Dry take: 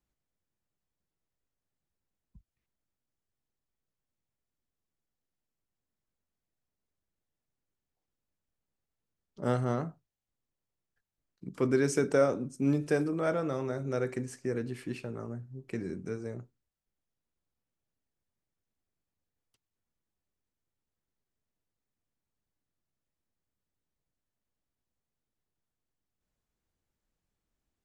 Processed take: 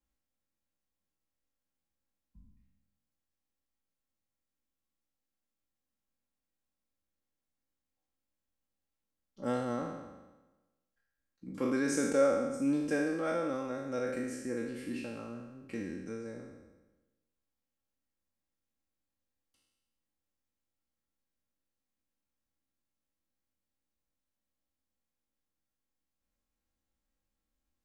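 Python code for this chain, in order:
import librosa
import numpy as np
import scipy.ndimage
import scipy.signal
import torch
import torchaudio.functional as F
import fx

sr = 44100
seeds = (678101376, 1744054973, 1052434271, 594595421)

y = fx.spec_trails(x, sr, decay_s=1.14)
y = y + 0.61 * np.pad(y, (int(3.7 * sr / 1000.0), 0))[:len(y)]
y = F.gain(torch.from_numpy(y), -6.0).numpy()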